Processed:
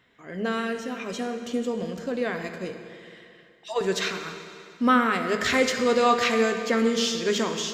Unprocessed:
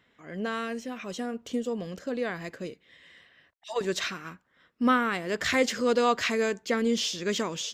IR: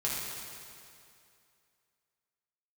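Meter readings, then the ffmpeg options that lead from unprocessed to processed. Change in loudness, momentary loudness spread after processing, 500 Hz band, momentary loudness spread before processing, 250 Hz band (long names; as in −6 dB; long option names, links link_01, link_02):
+3.5 dB, 15 LU, +4.0 dB, 13 LU, +3.5 dB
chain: -filter_complex "[0:a]bandreject=frequency=50:width_type=h:width=6,bandreject=frequency=100:width_type=h:width=6,bandreject=frequency=150:width_type=h:width=6,bandreject=frequency=200:width_type=h:width=6,asplit=2[link_01][link_02];[1:a]atrim=start_sample=2205,highshelf=frequency=8400:gain=-6[link_03];[link_02][link_03]afir=irnorm=-1:irlink=0,volume=-8dB[link_04];[link_01][link_04]amix=inputs=2:normalize=0"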